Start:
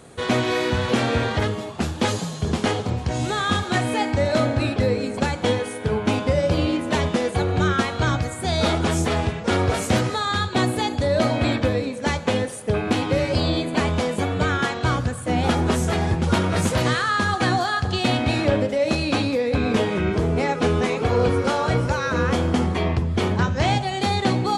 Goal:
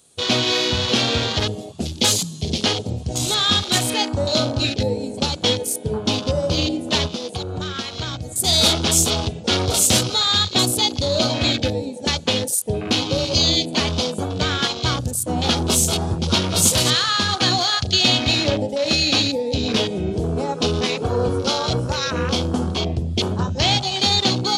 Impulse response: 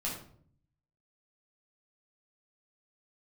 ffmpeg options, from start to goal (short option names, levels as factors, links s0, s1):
-filter_complex "[0:a]aexciter=amount=6.3:drive=4:freq=2800,afwtdn=0.0631,asplit=3[s0][s1][s2];[s0]afade=t=out:st=7.06:d=0.02[s3];[s1]acompressor=threshold=0.0708:ratio=6,afade=t=in:st=7.06:d=0.02,afade=t=out:st=8.31:d=0.02[s4];[s2]afade=t=in:st=8.31:d=0.02[s5];[s3][s4][s5]amix=inputs=3:normalize=0,volume=0.891"